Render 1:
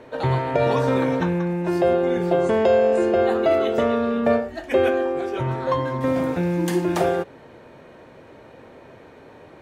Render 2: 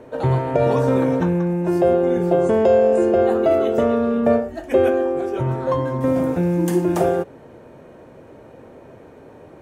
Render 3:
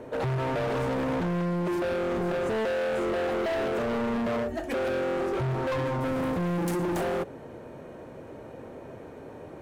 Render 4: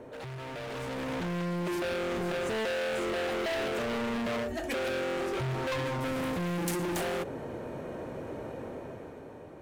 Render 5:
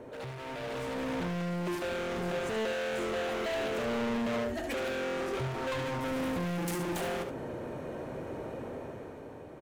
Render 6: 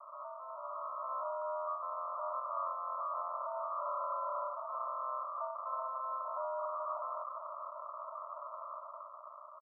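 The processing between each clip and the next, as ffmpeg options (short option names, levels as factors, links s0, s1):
-af "equalizer=f=1000:t=o:w=1:g=-3,equalizer=f=2000:t=o:w=1:g=-6,equalizer=f=4000:t=o:w=1:g=-9,volume=1.5"
-af "alimiter=limit=0.2:level=0:latency=1:release=24,asoftclip=type=hard:threshold=0.0473"
-filter_complex "[0:a]acrossover=split=2000[s0][s1];[s0]alimiter=level_in=3.35:limit=0.0631:level=0:latency=1:release=15,volume=0.299[s2];[s2][s1]amix=inputs=2:normalize=0,dynaudnorm=f=220:g=9:m=2.82,volume=0.596"
-filter_complex "[0:a]asoftclip=type=tanh:threshold=0.0355,asplit=2[s0][s1];[s1]aecho=0:1:73:0.398[s2];[s0][s2]amix=inputs=2:normalize=0"
-af "aresample=11025,acrusher=samples=14:mix=1:aa=0.000001,aresample=44100,asuperpass=centerf=890:order=20:qfactor=1.2,volume=2"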